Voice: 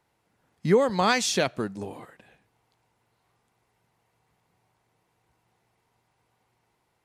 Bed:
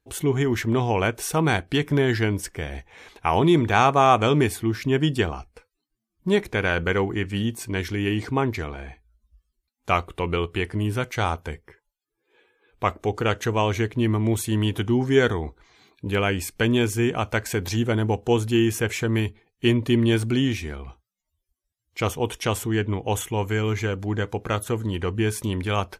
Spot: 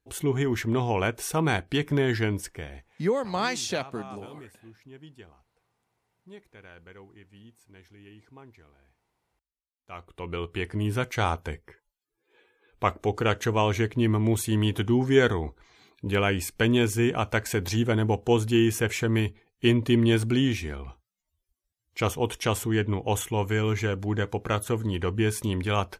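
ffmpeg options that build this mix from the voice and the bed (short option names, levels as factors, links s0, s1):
-filter_complex "[0:a]adelay=2350,volume=0.562[s0];[1:a]volume=11.9,afade=t=out:st=2.33:d=0.77:silence=0.0707946,afade=t=in:st=9.87:d=1.12:silence=0.0562341[s1];[s0][s1]amix=inputs=2:normalize=0"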